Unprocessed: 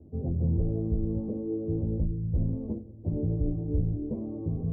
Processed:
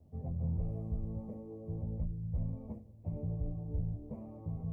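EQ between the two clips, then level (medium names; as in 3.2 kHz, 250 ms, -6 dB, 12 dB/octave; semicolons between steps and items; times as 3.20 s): FFT filter 190 Hz 0 dB, 340 Hz -12 dB, 630 Hz +4 dB, 1.8 kHz +12 dB; -8.0 dB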